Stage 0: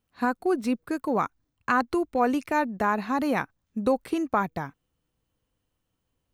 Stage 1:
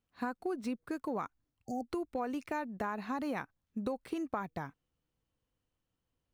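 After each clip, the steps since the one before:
running median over 3 samples
time-frequency box erased 0:01.64–0:01.88, 780–4,500 Hz
downward compressor 5 to 1, threshold −26 dBFS, peak gain reduction 8.5 dB
level −6.5 dB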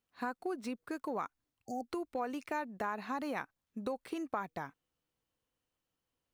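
low-shelf EQ 220 Hz −10.5 dB
level +1 dB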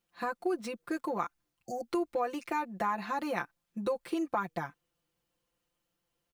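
comb filter 5.8 ms, depth 92%
level +2 dB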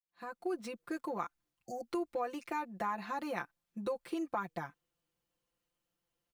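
fade in at the beginning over 0.52 s
level −4.5 dB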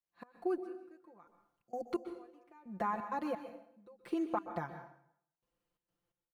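high-shelf EQ 2,200 Hz −10 dB
gate pattern "xx.xx......x" 130 BPM −24 dB
dense smooth reverb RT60 0.67 s, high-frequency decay 0.9×, pre-delay 115 ms, DRR 8.5 dB
level +2.5 dB

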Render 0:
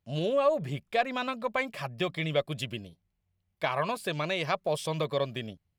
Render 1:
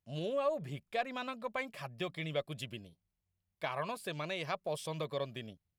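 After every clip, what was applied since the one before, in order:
parametric band 11,000 Hz +3 dB 0.96 octaves
level −8 dB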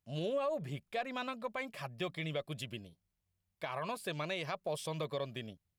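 brickwall limiter −28.5 dBFS, peak gain reduction 7 dB
level +1 dB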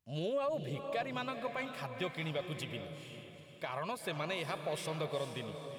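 feedback delay with all-pass diffusion 455 ms, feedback 41%, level −7.5 dB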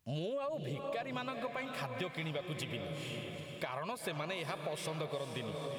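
downward compressor 5 to 1, threshold −46 dBFS, peak gain reduction 13.5 dB
level +9 dB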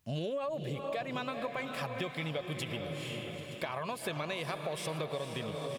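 single-tap delay 921 ms −15 dB
level +2.5 dB

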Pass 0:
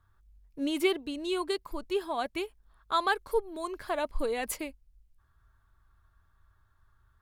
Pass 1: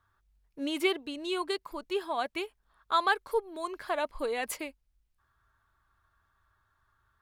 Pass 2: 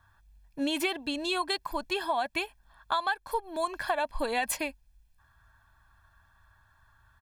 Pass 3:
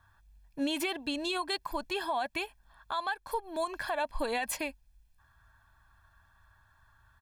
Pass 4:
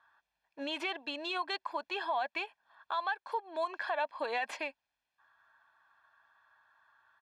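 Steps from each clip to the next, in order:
low-pass filter 1,700 Hz 6 dB per octave; spectral tilt +3 dB per octave; level +2.5 dB
comb filter 1.2 ms, depth 64%; downward compressor 12 to 1, threshold −32 dBFS, peak gain reduction 14.5 dB; level +7 dB
brickwall limiter −22 dBFS, peak gain reduction 7 dB; level −1 dB
stylus tracing distortion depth 0.027 ms; band-pass filter 510–3,500 Hz

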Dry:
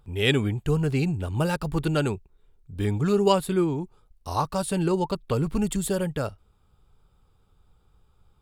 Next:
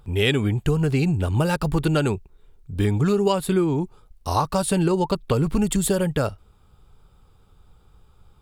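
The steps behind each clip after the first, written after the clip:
downward compressor 6 to 1, threshold −24 dBFS, peak gain reduction 9.5 dB
level +7.5 dB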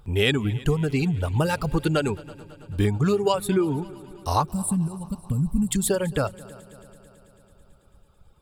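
reverb reduction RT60 1.9 s
gain on a spectral selection 0:04.43–0:05.71, 270–7,300 Hz −21 dB
echo machine with several playback heads 110 ms, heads second and third, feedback 62%, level −22 dB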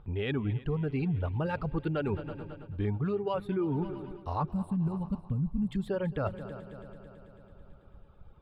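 reversed playback
downward compressor, threshold −30 dBFS, peak gain reduction 13 dB
reversed playback
high-frequency loss of the air 410 metres
level +2.5 dB

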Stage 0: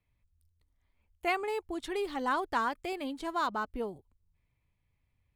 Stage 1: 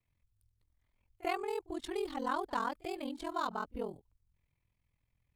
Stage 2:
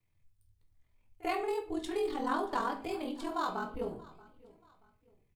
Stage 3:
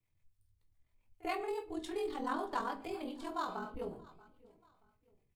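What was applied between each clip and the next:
ring modulation 21 Hz; echo ahead of the sound 44 ms −22 dB; dynamic equaliser 2,000 Hz, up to −6 dB, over −50 dBFS, Q 1.3
repeating echo 631 ms, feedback 35%, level −22 dB; convolution reverb RT60 0.45 s, pre-delay 6 ms, DRR 3 dB
two-band tremolo in antiphase 7.2 Hz, depth 50%, crossover 500 Hz; level −2 dB

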